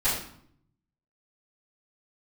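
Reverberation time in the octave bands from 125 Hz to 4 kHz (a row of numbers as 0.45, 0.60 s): 1.2, 0.90, 0.65, 0.65, 0.55, 0.50 s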